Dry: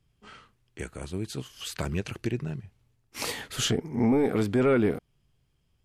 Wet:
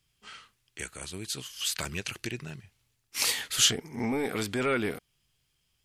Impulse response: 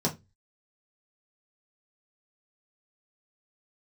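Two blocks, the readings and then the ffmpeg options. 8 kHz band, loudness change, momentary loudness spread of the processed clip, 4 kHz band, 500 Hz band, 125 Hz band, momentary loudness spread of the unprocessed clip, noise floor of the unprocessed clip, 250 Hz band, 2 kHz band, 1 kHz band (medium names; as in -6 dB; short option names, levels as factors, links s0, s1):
+8.0 dB, -1.5 dB, 22 LU, +6.0 dB, -6.5 dB, -8.5 dB, 16 LU, -71 dBFS, -7.5 dB, +3.0 dB, -1.5 dB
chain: -af "tiltshelf=f=1300:g=-8.5"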